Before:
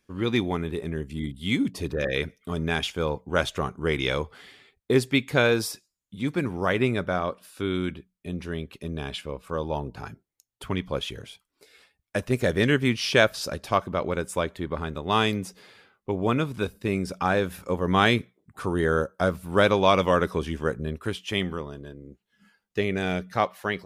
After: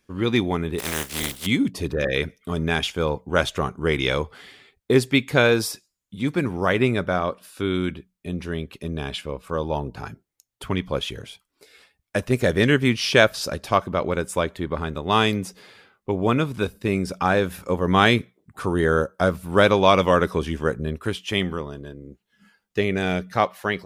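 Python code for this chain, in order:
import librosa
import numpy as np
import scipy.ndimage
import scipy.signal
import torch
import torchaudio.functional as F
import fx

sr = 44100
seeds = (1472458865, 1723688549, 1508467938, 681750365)

y = fx.spec_flatten(x, sr, power=0.28, at=(0.78, 1.45), fade=0.02)
y = y * librosa.db_to_amplitude(3.5)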